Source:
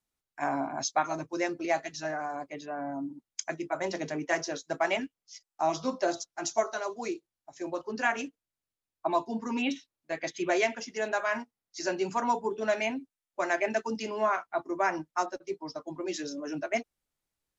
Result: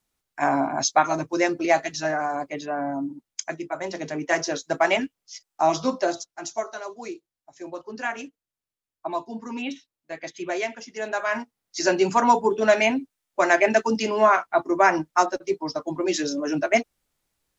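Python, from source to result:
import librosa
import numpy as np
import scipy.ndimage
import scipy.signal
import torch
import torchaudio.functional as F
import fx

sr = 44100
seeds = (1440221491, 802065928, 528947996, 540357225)

y = fx.gain(x, sr, db=fx.line((2.74, 8.5), (3.88, 1.0), (4.47, 7.5), (5.85, 7.5), (6.47, -1.0), (10.84, -1.0), (11.78, 10.0)))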